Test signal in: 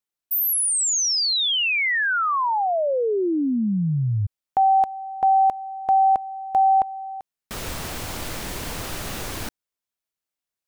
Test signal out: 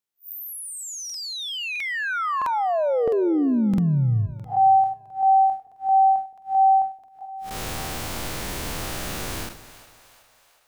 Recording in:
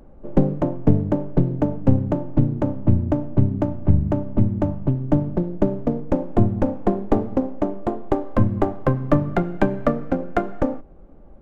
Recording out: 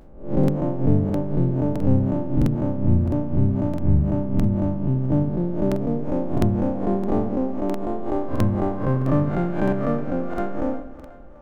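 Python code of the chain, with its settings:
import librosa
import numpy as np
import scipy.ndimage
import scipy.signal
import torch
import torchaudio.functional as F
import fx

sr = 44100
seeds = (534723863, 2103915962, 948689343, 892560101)

y = fx.spec_blur(x, sr, span_ms=116.0)
y = fx.echo_split(y, sr, split_hz=550.0, low_ms=168, high_ms=369, feedback_pct=52, wet_db=-15.5)
y = fx.buffer_crackle(y, sr, first_s=0.39, period_s=0.66, block=2048, kind='repeat')
y = F.gain(torch.from_numpy(y), 2.0).numpy()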